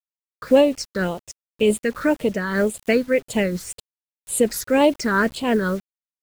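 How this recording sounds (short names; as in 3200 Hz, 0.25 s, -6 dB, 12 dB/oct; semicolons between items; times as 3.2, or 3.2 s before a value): phasing stages 6, 1.9 Hz, lowest notch 700–1600 Hz; a quantiser's noise floor 8-bit, dither none; noise-modulated level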